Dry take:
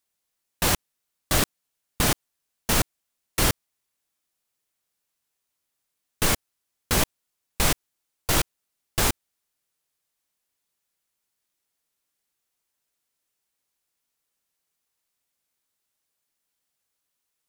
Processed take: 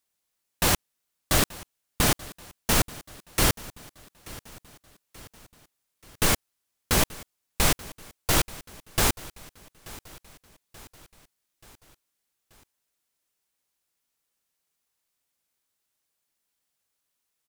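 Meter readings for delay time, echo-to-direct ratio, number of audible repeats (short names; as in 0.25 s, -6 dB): 0.882 s, -18.5 dB, 3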